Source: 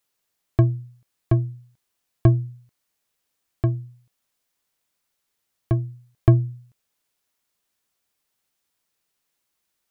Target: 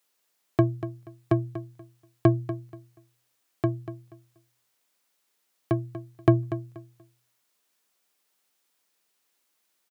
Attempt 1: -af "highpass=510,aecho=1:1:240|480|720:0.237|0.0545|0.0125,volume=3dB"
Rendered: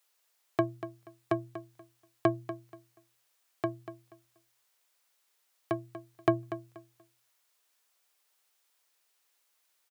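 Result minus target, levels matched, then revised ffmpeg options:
500 Hz band +3.0 dB
-af "highpass=220,aecho=1:1:240|480|720:0.237|0.0545|0.0125,volume=3dB"

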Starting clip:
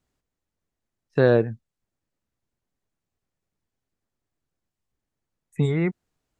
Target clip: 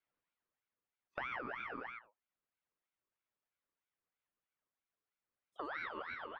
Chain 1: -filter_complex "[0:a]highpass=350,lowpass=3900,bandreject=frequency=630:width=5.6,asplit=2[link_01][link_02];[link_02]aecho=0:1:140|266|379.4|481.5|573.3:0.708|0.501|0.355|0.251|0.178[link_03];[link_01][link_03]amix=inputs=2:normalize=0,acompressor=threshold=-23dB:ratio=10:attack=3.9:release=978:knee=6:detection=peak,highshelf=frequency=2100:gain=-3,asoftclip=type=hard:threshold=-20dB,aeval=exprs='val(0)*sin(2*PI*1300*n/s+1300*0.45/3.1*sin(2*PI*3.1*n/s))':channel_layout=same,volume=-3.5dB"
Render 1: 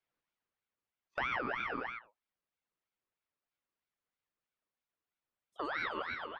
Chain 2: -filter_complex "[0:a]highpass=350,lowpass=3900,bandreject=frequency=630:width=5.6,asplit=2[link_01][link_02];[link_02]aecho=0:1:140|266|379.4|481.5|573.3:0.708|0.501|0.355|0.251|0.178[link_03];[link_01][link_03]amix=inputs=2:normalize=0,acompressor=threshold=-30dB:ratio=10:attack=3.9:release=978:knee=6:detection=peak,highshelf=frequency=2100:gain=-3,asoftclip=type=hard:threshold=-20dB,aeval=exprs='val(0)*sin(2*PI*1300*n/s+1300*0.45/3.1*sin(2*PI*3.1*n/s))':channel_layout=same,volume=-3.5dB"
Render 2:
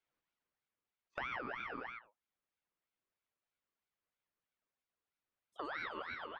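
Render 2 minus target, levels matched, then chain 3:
4,000 Hz band +3.0 dB
-filter_complex "[0:a]highpass=350,lowpass=3900,bandreject=frequency=630:width=5.6,asplit=2[link_01][link_02];[link_02]aecho=0:1:140|266|379.4|481.5|573.3:0.708|0.501|0.355|0.251|0.178[link_03];[link_01][link_03]amix=inputs=2:normalize=0,acompressor=threshold=-30dB:ratio=10:attack=3.9:release=978:knee=6:detection=peak,highshelf=frequency=2100:gain=-11,asoftclip=type=hard:threshold=-20dB,aeval=exprs='val(0)*sin(2*PI*1300*n/s+1300*0.45/3.1*sin(2*PI*3.1*n/s))':channel_layout=same,volume=-3.5dB"

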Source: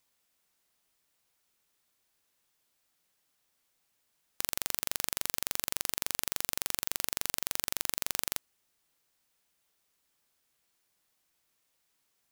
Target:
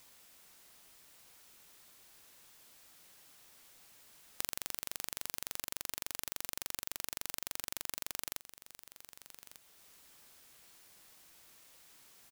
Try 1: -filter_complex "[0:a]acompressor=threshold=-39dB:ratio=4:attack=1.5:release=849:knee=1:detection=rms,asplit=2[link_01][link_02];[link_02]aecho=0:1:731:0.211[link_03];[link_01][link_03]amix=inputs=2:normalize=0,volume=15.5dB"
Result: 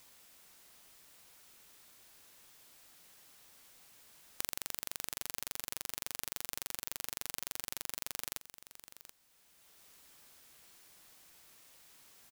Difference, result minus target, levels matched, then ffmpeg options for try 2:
echo 464 ms early
-filter_complex "[0:a]acompressor=threshold=-39dB:ratio=4:attack=1.5:release=849:knee=1:detection=rms,asplit=2[link_01][link_02];[link_02]aecho=0:1:1195:0.211[link_03];[link_01][link_03]amix=inputs=2:normalize=0,volume=15.5dB"

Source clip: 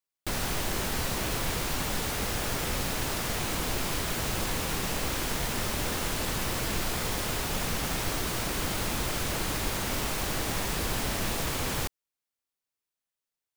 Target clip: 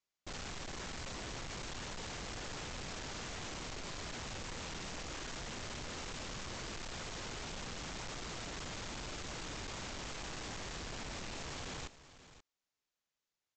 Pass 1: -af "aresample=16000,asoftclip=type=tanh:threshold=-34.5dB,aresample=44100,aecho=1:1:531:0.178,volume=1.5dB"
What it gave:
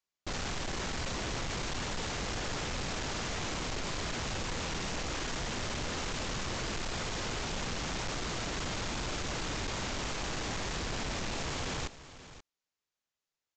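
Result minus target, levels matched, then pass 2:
soft clipping: distortion −4 dB
-af "aresample=16000,asoftclip=type=tanh:threshold=-44.5dB,aresample=44100,aecho=1:1:531:0.178,volume=1.5dB"

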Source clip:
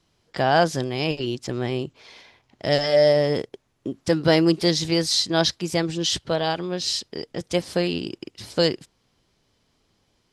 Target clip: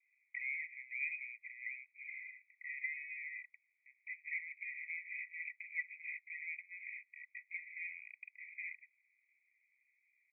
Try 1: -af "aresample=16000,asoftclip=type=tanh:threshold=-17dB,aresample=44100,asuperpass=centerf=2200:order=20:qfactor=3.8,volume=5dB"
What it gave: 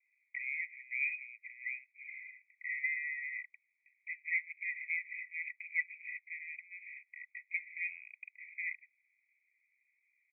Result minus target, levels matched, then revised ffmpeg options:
soft clipping: distortion −7 dB
-af "aresample=16000,asoftclip=type=tanh:threshold=-28dB,aresample=44100,asuperpass=centerf=2200:order=20:qfactor=3.8,volume=5dB"

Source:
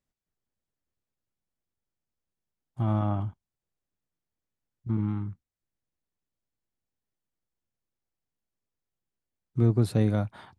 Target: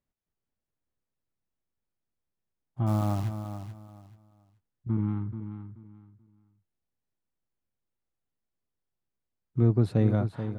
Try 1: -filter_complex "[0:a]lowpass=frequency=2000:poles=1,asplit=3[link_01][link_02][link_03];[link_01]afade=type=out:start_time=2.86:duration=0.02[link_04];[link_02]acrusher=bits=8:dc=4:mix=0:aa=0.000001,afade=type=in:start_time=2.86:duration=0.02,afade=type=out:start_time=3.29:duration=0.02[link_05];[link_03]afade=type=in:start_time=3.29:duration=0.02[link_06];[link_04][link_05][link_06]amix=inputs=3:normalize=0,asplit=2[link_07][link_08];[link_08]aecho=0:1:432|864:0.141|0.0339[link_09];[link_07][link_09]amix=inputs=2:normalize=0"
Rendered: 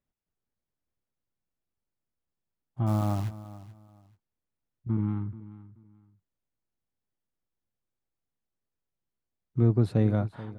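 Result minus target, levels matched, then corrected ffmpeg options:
echo-to-direct −7 dB
-filter_complex "[0:a]lowpass=frequency=2000:poles=1,asplit=3[link_01][link_02][link_03];[link_01]afade=type=out:start_time=2.86:duration=0.02[link_04];[link_02]acrusher=bits=8:dc=4:mix=0:aa=0.000001,afade=type=in:start_time=2.86:duration=0.02,afade=type=out:start_time=3.29:duration=0.02[link_05];[link_03]afade=type=in:start_time=3.29:duration=0.02[link_06];[link_04][link_05][link_06]amix=inputs=3:normalize=0,asplit=2[link_07][link_08];[link_08]aecho=0:1:432|864|1296:0.316|0.0759|0.0182[link_09];[link_07][link_09]amix=inputs=2:normalize=0"

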